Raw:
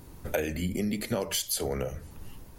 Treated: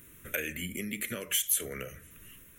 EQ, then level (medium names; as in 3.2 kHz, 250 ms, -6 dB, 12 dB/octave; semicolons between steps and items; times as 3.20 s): tilt shelf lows -6.5 dB, about 1.1 kHz; bass shelf 93 Hz -9.5 dB; static phaser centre 2 kHz, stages 4; 0.0 dB